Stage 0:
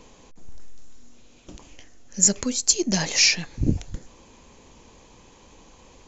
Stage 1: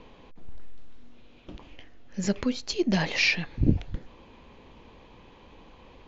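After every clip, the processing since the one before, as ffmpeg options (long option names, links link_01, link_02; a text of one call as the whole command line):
ffmpeg -i in.wav -af "lowpass=frequency=3700:width=0.5412,lowpass=frequency=3700:width=1.3066" out.wav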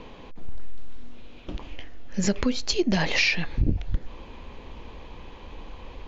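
ffmpeg -i in.wav -af "asubboost=boost=2.5:cutoff=82,acompressor=threshold=-26dB:ratio=5,volume=7dB" out.wav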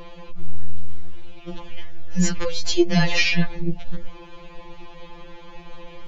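ffmpeg -i in.wav -af "afftfilt=real='re*2.83*eq(mod(b,8),0)':imag='im*2.83*eq(mod(b,8),0)':win_size=2048:overlap=0.75,volume=5dB" out.wav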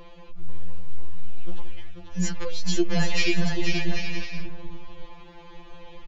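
ffmpeg -i in.wav -af "aecho=1:1:490|784|960.4|1066|1130:0.631|0.398|0.251|0.158|0.1,volume=-6.5dB" out.wav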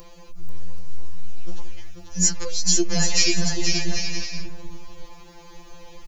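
ffmpeg -i in.wav -af "aexciter=amount=7.8:drive=4.3:freq=4800" out.wav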